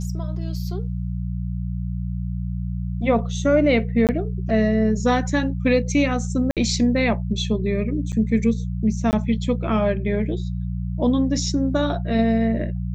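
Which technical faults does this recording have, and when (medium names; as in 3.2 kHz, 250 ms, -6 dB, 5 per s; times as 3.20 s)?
hum 60 Hz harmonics 3 -26 dBFS
4.07–4.09 s: dropout 18 ms
6.51–6.57 s: dropout 57 ms
8.12–8.13 s: dropout 7.6 ms
9.11–9.13 s: dropout 19 ms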